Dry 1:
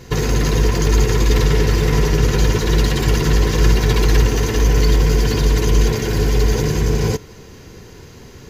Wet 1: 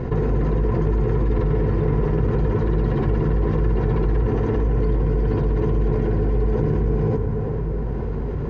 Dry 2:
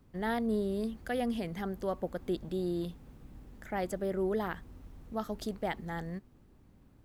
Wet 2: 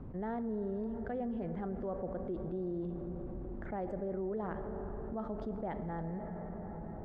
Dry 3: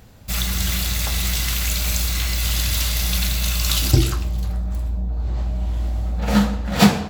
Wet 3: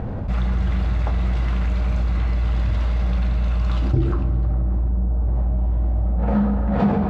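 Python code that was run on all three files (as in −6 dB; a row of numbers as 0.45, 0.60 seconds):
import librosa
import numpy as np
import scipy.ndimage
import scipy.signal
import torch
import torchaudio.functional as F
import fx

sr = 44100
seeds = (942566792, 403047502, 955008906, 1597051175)

y = scipy.signal.sosfilt(scipy.signal.butter(2, 1000.0, 'lowpass', fs=sr, output='sos'), x)
y = fx.rev_plate(y, sr, seeds[0], rt60_s=4.7, hf_ratio=0.4, predelay_ms=0, drr_db=11.0)
y = fx.env_flatten(y, sr, amount_pct=70)
y = F.gain(torch.from_numpy(y), -7.0).numpy()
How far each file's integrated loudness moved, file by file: −5.0, −4.0, −1.0 LU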